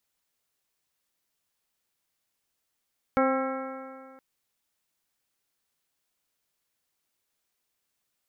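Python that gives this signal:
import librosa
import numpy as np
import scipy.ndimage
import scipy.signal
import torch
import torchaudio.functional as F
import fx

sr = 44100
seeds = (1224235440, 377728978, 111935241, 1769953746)

y = fx.additive_stiff(sr, length_s=1.02, hz=263.0, level_db=-24.0, upper_db=(1.5, -3.5, -8.5, -2.0, -12.0, -17, -11.5), decay_s=2.01, stiffness=0.0015)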